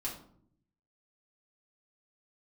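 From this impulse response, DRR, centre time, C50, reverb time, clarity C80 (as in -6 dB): -5.0 dB, 26 ms, 7.5 dB, 0.65 s, 11.5 dB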